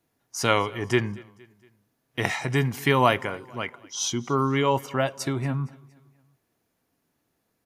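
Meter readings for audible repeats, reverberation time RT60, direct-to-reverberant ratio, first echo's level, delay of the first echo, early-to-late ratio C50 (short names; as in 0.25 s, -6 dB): 2, none, none, -23.0 dB, 0.232 s, none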